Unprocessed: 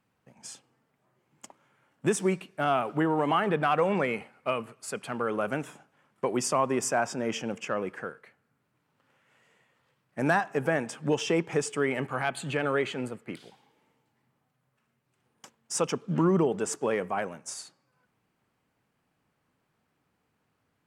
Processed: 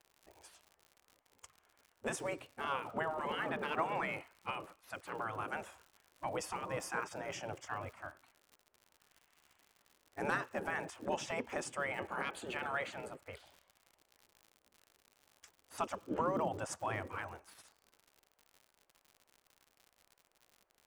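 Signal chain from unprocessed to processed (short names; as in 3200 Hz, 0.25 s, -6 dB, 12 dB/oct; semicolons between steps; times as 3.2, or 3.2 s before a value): tilt shelf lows +9 dB, about 650 Hz; spectral gate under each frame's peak -15 dB weak; crackle 100/s -49 dBFS; gain +1 dB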